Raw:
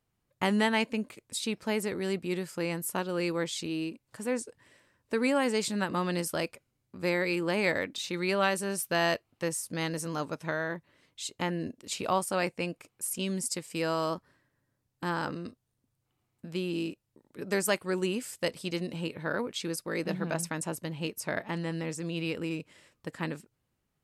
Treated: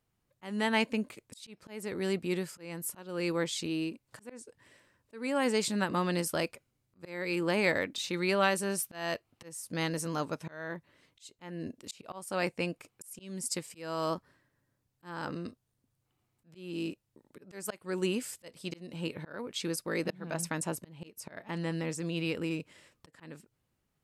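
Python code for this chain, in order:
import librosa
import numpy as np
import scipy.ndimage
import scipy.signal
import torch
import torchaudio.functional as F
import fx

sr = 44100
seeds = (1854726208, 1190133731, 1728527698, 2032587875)

y = fx.auto_swell(x, sr, attack_ms=359.0)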